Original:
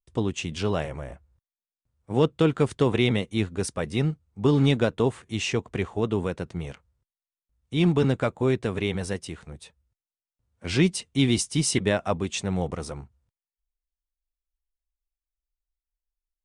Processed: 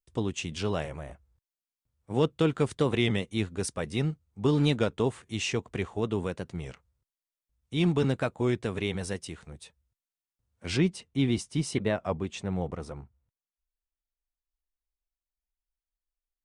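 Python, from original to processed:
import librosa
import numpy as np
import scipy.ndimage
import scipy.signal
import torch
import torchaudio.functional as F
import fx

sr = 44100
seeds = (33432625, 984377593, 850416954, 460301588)

y = fx.high_shelf(x, sr, hz=3200.0, db=fx.steps((0.0, 3.0), (10.76, -10.0)))
y = fx.record_warp(y, sr, rpm=33.33, depth_cents=100.0)
y = y * librosa.db_to_amplitude(-4.0)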